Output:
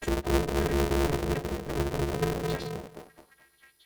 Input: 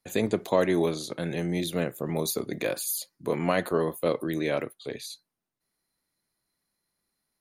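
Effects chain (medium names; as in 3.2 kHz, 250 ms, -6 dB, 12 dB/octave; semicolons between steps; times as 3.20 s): partials quantised in pitch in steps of 3 st; low-pass that closes with the level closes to 470 Hz, closed at -22.5 dBFS; compression 8:1, threshold -40 dBFS, peak gain reduction 17 dB; granular stretch 0.52×, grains 27 ms; small resonant body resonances 210/1800/2800 Hz, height 17 dB, ringing for 55 ms; dynamic bell 300 Hz, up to +7 dB, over -46 dBFS, Q 1.6; on a send: repeats whose band climbs or falls 218 ms, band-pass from 260 Hz, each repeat 0.7 oct, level 0 dB; on the sum: polarity switched at an audio rate 140 Hz; trim +2 dB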